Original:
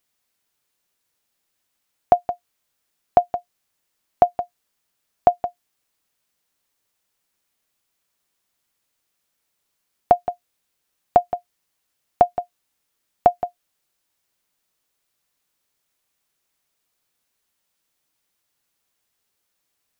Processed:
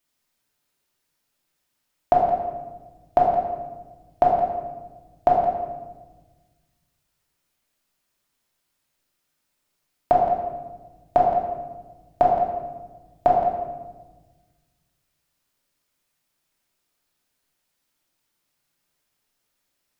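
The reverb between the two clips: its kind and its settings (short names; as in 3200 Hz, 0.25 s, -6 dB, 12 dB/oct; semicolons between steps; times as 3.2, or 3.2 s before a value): shoebox room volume 870 m³, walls mixed, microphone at 2.7 m; gain -5 dB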